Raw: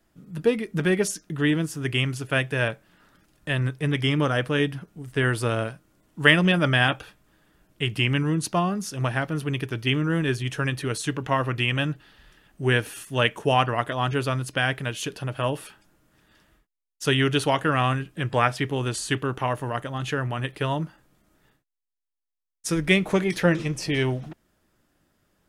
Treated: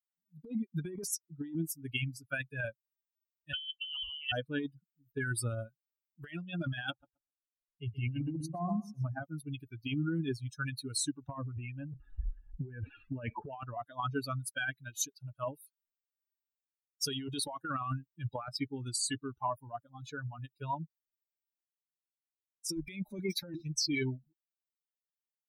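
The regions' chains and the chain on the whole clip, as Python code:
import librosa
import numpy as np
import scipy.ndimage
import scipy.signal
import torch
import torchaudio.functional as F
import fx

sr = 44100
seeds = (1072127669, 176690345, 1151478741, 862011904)

y = fx.chain(x, sr, fx.highpass(hz=91.0, slope=24),
    fx.freq_invert(carrier_hz=3200), at=(3.53, 4.32))
y = fx.chain(y, sr, fx.high_shelf(hz=2100.0, db=-10.0),
    fx.echo_feedback(ms=127, feedback_pct=41, wet_db=-5.0), at=(6.9, 9.23))
y = fx.chain(y, sr, fx.lowpass(hz=2700.0, slope=24),
    fx.tilt_shelf(db=3.0, hz=930.0),
    fx.env_flatten(amount_pct=50), at=(11.29, 13.52))
y = fx.bin_expand(y, sr, power=3.0)
y = fx.high_shelf(y, sr, hz=2700.0, db=5.0)
y = fx.over_compress(y, sr, threshold_db=-37.0, ratio=-1.0)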